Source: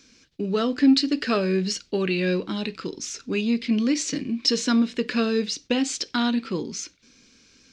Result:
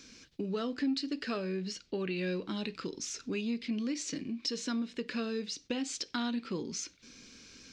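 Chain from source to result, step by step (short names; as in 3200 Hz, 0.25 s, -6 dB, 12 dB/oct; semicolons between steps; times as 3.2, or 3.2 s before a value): compressor 2:1, threshold -42 dBFS, peak gain reduction 15.5 dB; 1.41–2.15 LPF 6500 Hz -> 3900 Hz 6 dB/oct; vocal rider within 3 dB 2 s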